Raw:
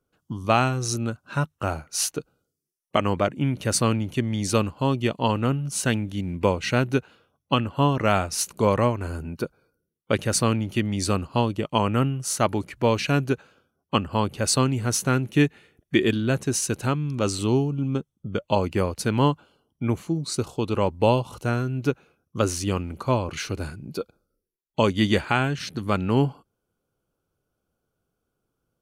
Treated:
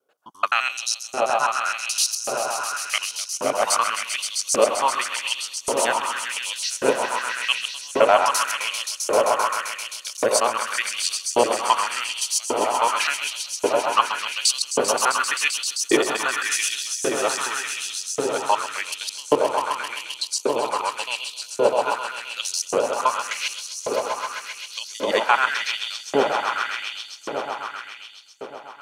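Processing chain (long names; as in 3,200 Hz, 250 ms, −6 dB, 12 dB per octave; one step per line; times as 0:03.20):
reversed piece by piece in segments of 86 ms
echo that builds up and dies away 131 ms, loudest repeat 5, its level −9 dB
auto-filter high-pass saw up 0.88 Hz 430–6,800 Hz
level +1.5 dB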